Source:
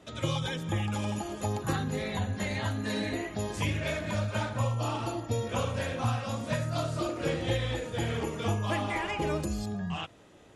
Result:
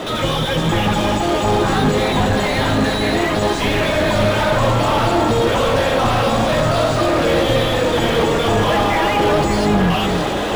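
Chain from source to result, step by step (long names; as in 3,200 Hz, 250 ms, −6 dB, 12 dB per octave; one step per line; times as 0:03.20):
sub-octave generator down 2 octaves, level 0 dB
flat-topped bell 5,200 Hz +9 dB
reversed playback
upward compression, threshold −37 dBFS
reversed playback
mid-hump overdrive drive 37 dB, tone 1,000 Hz, clips at −13.5 dBFS
on a send: delay that swaps between a low-pass and a high-pass 287 ms, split 960 Hz, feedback 78%, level −6 dB
on the sum: linearly interpolated sample-rate reduction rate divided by 3×
level +7 dB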